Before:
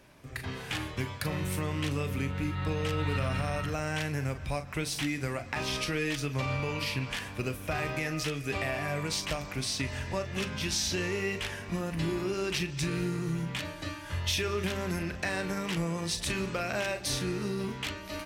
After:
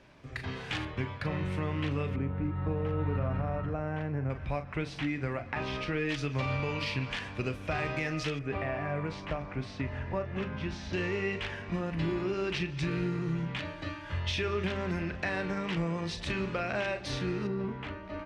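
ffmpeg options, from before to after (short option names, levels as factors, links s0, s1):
-af "asetnsamples=n=441:p=0,asendcmd='0.85 lowpass f 2700;2.16 lowpass f 1100;4.3 lowpass f 2400;6.09 lowpass f 4400;8.39 lowpass f 1700;10.93 lowpass f 3300;17.47 lowpass f 1600',lowpass=4900"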